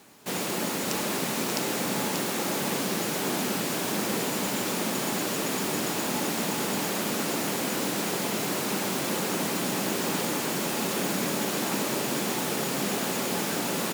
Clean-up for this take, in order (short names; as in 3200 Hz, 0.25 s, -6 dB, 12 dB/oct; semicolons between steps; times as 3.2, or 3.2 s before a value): inverse comb 0.586 s -6.5 dB